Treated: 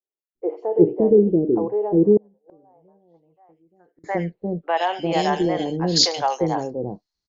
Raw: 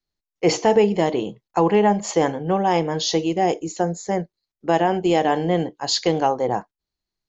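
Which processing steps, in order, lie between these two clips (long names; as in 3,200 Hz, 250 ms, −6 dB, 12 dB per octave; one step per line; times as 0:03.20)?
low-pass filter sweep 380 Hz → 5,600 Hz, 0:02.16–0:05.23
three-band delay without the direct sound mids, highs, lows 80/350 ms, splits 510/2,500 Hz
0:02.17–0:04.04: gate with flip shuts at −23 dBFS, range −36 dB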